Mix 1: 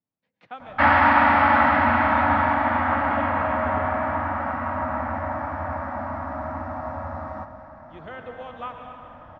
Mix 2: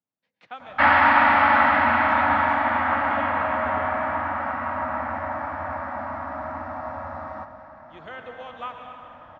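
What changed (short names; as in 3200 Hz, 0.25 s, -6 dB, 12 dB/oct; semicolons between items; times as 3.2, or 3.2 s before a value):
background: add LPF 4600 Hz 12 dB/oct; master: add tilt +2 dB/oct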